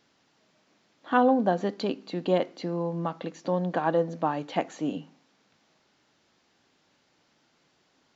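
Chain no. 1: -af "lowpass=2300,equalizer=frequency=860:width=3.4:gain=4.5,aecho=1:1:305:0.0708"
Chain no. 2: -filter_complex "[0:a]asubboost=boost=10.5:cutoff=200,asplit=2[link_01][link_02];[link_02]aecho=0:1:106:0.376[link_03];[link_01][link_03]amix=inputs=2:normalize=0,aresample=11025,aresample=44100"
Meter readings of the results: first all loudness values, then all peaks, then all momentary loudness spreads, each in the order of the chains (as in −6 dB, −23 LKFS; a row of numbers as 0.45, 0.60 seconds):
−27.0, −22.5 LKFS; −9.5, −9.0 dBFS; 11, 8 LU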